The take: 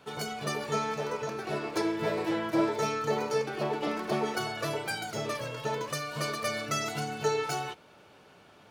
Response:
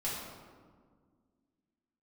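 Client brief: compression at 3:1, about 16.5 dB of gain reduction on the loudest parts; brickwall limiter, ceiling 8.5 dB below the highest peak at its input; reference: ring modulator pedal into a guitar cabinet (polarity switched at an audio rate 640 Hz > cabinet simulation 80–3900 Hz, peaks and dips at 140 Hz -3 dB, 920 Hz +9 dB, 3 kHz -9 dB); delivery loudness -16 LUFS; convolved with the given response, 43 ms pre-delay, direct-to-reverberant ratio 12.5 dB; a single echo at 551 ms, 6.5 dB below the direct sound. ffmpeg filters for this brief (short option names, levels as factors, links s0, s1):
-filter_complex "[0:a]acompressor=threshold=0.00501:ratio=3,alimiter=level_in=5.62:limit=0.0631:level=0:latency=1,volume=0.178,aecho=1:1:551:0.473,asplit=2[s0][s1];[1:a]atrim=start_sample=2205,adelay=43[s2];[s1][s2]afir=irnorm=-1:irlink=0,volume=0.141[s3];[s0][s3]amix=inputs=2:normalize=0,aeval=exprs='val(0)*sgn(sin(2*PI*640*n/s))':c=same,highpass=80,equalizer=f=140:t=q:w=4:g=-3,equalizer=f=920:t=q:w=4:g=9,equalizer=f=3000:t=q:w=4:g=-9,lowpass=f=3900:w=0.5412,lowpass=f=3900:w=1.3066,volume=29.9"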